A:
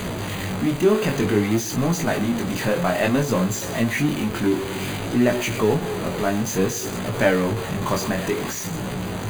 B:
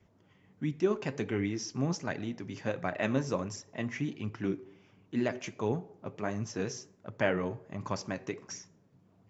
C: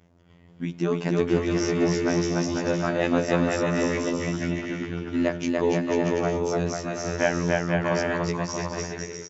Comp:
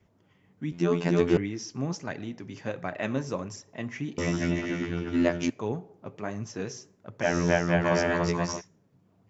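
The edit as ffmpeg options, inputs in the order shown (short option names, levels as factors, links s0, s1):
-filter_complex "[2:a]asplit=3[s0][s1][s2];[1:a]asplit=4[s3][s4][s5][s6];[s3]atrim=end=0.722[s7];[s0]atrim=start=0.718:end=1.372[s8];[s4]atrim=start=1.368:end=4.182[s9];[s1]atrim=start=4.178:end=5.502[s10];[s5]atrim=start=5.498:end=7.3[s11];[s2]atrim=start=7.2:end=8.62[s12];[s6]atrim=start=8.52[s13];[s7][s8]acrossfade=d=0.004:c1=hsin:c2=hsin[s14];[s14][s9]acrossfade=d=0.004:c1=hsin:c2=hsin[s15];[s15][s10]acrossfade=d=0.004:c1=hsin:c2=hsin[s16];[s16][s11]acrossfade=d=0.004:c1=hsin:c2=hsin[s17];[s17][s12]acrossfade=d=0.1:c1=tri:c2=tri[s18];[s18][s13]acrossfade=d=0.1:c1=tri:c2=tri"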